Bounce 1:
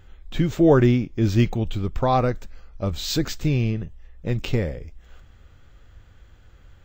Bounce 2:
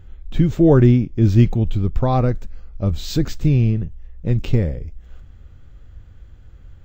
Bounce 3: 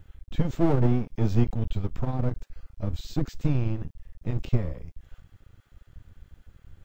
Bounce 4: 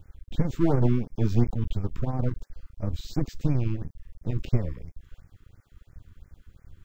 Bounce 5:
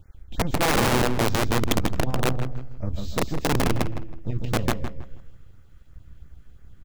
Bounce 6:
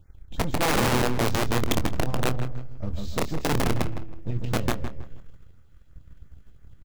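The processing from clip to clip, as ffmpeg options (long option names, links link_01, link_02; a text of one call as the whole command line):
ffmpeg -i in.wav -af "lowshelf=frequency=370:gain=11.5,volume=-3.5dB" out.wav
ffmpeg -i in.wav -filter_complex "[0:a]acrossover=split=650[link_01][link_02];[link_01]aeval=exprs='max(val(0),0)':channel_layout=same[link_03];[link_02]acompressor=threshold=-40dB:ratio=6[link_04];[link_03][link_04]amix=inputs=2:normalize=0,acrusher=bits=11:mix=0:aa=0.000001,volume=-4.5dB" out.wav
ffmpeg -i in.wav -af "afftfilt=real='re*(1-between(b*sr/1024,600*pow(3600/600,0.5+0.5*sin(2*PI*2.9*pts/sr))/1.41,600*pow(3600/600,0.5+0.5*sin(2*PI*2.9*pts/sr))*1.41))':imag='im*(1-between(b*sr/1024,600*pow(3600/600,0.5+0.5*sin(2*PI*2.9*pts/sr))/1.41,600*pow(3600/600,0.5+0.5*sin(2*PI*2.9*pts/sr))*1.41))':win_size=1024:overlap=0.75" out.wav
ffmpeg -i in.wav -filter_complex "[0:a]asplit=2[link_01][link_02];[link_02]aecho=0:1:146|292|438|584:0.631|0.202|0.0646|0.0207[link_03];[link_01][link_03]amix=inputs=2:normalize=0,aeval=exprs='(mod(5.62*val(0)+1,2)-1)/5.62':channel_layout=same,asplit=2[link_04][link_05];[link_05]adelay=161,lowpass=frequency=2800:poles=1,volume=-10dB,asplit=2[link_06][link_07];[link_07]adelay=161,lowpass=frequency=2800:poles=1,volume=0.27,asplit=2[link_08][link_09];[link_09]adelay=161,lowpass=frequency=2800:poles=1,volume=0.27[link_10];[link_06][link_08][link_10]amix=inputs=3:normalize=0[link_11];[link_04][link_11]amix=inputs=2:normalize=0" out.wav
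ffmpeg -i in.wav -filter_complex "[0:a]asplit=2[link_01][link_02];[link_02]acrusher=bits=5:mix=0:aa=0.5,volume=-8dB[link_03];[link_01][link_03]amix=inputs=2:normalize=0,asplit=2[link_04][link_05];[link_05]adelay=25,volume=-11.5dB[link_06];[link_04][link_06]amix=inputs=2:normalize=0,volume=-5dB" out.wav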